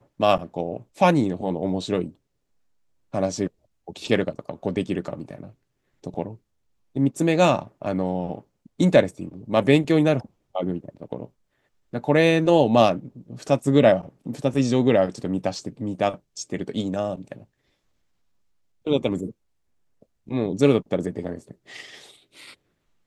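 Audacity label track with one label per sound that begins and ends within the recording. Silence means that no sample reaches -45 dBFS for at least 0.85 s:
3.130000	17.440000	sound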